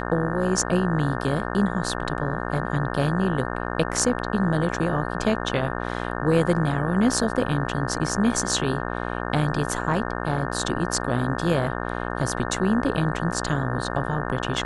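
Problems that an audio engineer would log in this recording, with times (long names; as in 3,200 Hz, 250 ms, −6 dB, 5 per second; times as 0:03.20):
mains buzz 60 Hz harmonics 30 −29 dBFS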